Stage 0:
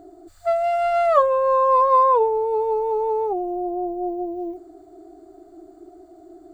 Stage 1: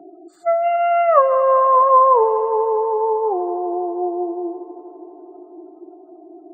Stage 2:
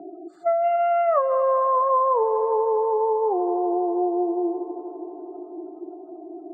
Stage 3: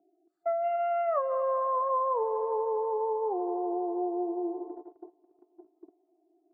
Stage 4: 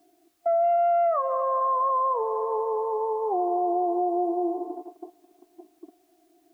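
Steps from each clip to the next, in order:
spectral gate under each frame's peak -30 dB strong; Chebyshev high-pass 150 Hz, order 10; multi-head echo 81 ms, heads second and third, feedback 75%, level -18 dB; gain +3.5 dB
compressor 2.5:1, threshold -24 dBFS, peak gain reduction 11 dB; LPF 1300 Hz 6 dB/oct; gain +3.5 dB
gate -32 dBFS, range -23 dB; gain -8 dB
small resonant body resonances 250/710/1100 Hz, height 11 dB, ringing for 25 ms; requantised 12-bit, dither triangular; limiter -18 dBFS, peak gain reduction 6.5 dB

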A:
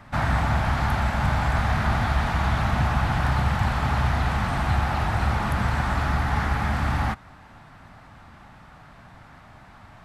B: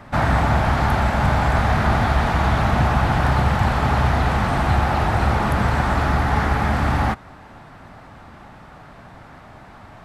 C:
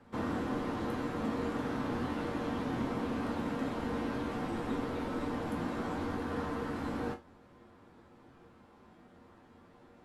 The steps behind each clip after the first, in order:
bell 430 Hz +7 dB 1.5 oct; gain +3.5 dB
resonator bank F#2 major, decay 0.22 s; frequency shift -360 Hz; gain -5.5 dB

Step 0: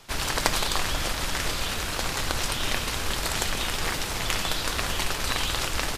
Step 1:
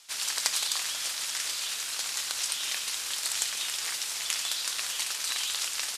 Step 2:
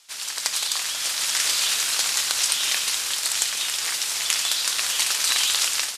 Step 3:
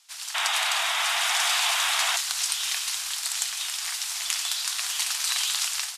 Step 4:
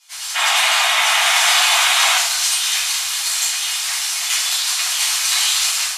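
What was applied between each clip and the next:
LPF 9000 Hz 12 dB/oct; differentiator; gain +4 dB
AGC gain up to 11.5 dB
painted sound noise, 0.34–2.17, 210–3900 Hz -21 dBFS; Chebyshev band-stop 100–680 Hz, order 5; gain -4.5 dB
reverb RT60 0.60 s, pre-delay 6 ms, DRR -9.5 dB

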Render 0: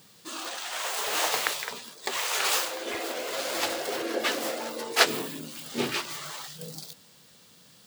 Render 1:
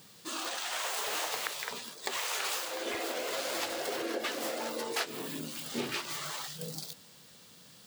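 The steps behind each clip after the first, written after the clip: compressor 8:1, threshold -31 dBFS, peak gain reduction 16.5 dB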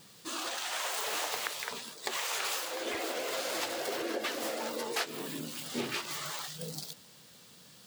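vibrato 9.4 Hz 48 cents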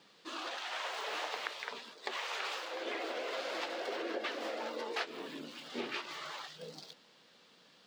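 three-band isolator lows -21 dB, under 220 Hz, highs -23 dB, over 4800 Hz; gain -2.5 dB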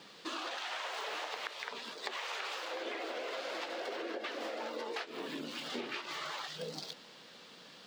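compressor 6:1, threshold -46 dBFS, peak gain reduction 14 dB; gain +8.5 dB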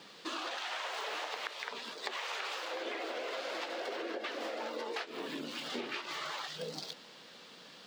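low shelf 82 Hz -5.5 dB; gain +1 dB

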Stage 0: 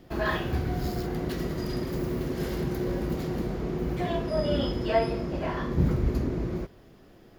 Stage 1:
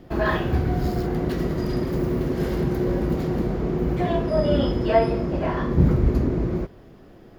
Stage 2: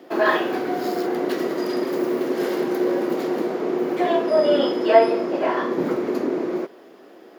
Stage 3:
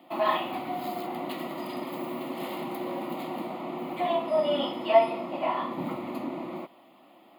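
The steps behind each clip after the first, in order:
high shelf 2300 Hz -8 dB; gain +6.5 dB
HPF 300 Hz 24 dB/oct; gain +5 dB
fixed phaser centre 1600 Hz, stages 6; gain -2.5 dB

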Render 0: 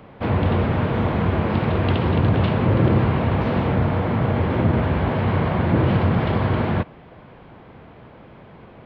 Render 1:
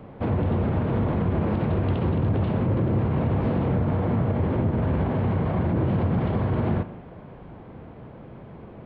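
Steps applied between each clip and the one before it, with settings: limiter -18 dBFS, peak gain reduction 11 dB; tilt shelf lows +5.5 dB; spring tank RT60 1.2 s, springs 39 ms, chirp 55 ms, DRR 12.5 dB; gain -2.5 dB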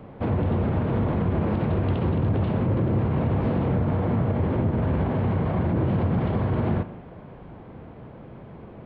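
nothing audible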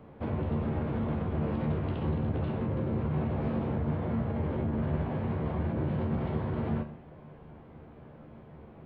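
resonator 75 Hz, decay 0.37 s, harmonics all, mix 80%

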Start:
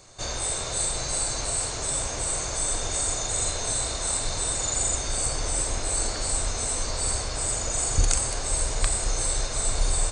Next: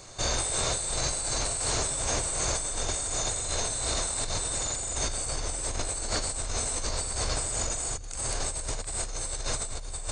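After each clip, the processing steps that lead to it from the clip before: negative-ratio compressor -31 dBFS, ratio -1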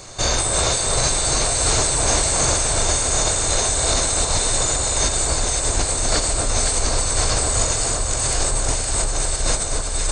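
echo with dull and thin repeats by turns 0.257 s, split 1500 Hz, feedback 84%, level -3.5 dB; gain +8.5 dB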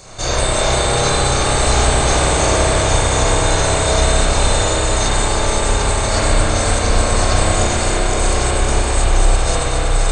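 spring tank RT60 3.8 s, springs 31/56 ms, chirp 45 ms, DRR -9.5 dB; gain -2.5 dB

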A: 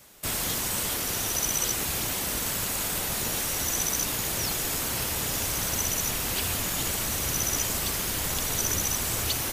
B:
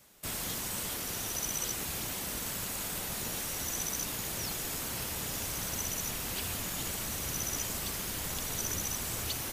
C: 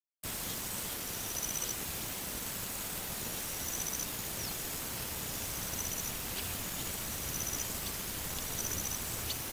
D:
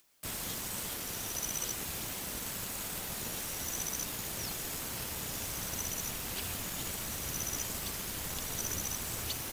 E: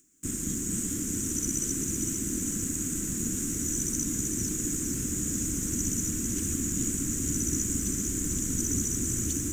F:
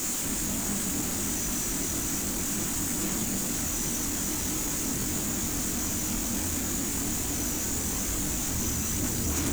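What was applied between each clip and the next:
bell 190 Hz +2.5 dB; gain -7.5 dB
crossover distortion -47 dBFS
upward compressor, threshold -46 dBFS
EQ curve 150 Hz 0 dB, 300 Hz +9 dB, 710 Hz -30 dB, 1500 Hz -12 dB, 4600 Hz -21 dB, 7000 Hz +6 dB, 11000 Hz -13 dB; on a send: split-band echo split 630 Hz, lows 0.223 s, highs 0.452 s, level -5 dB; on the sum: gain +8.5 dB
infinite clipping; chorus voices 4, 1.2 Hz, delay 23 ms, depth 3 ms; gain +3.5 dB

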